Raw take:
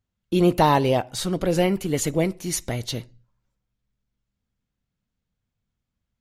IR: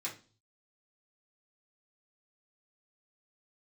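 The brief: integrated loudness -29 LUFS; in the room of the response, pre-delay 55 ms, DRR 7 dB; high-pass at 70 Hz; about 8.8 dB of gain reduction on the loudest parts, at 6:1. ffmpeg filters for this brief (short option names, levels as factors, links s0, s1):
-filter_complex "[0:a]highpass=70,acompressor=threshold=0.0794:ratio=6,asplit=2[s0][s1];[1:a]atrim=start_sample=2205,adelay=55[s2];[s1][s2]afir=irnorm=-1:irlink=0,volume=0.398[s3];[s0][s3]amix=inputs=2:normalize=0,volume=0.841"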